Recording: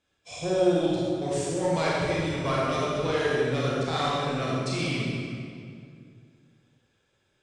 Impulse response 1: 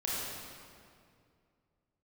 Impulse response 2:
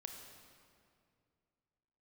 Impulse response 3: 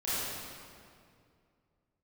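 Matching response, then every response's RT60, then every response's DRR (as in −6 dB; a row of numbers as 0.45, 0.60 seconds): 1; 2.3, 2.3, 2.3 seconds; −6.5, 3.5, −12.5 decibels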